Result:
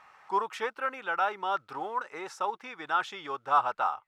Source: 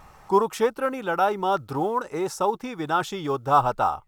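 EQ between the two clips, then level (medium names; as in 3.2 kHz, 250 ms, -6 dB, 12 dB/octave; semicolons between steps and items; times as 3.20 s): band-pass filter 1.9 kHz, Q 1.1; 0.0 dB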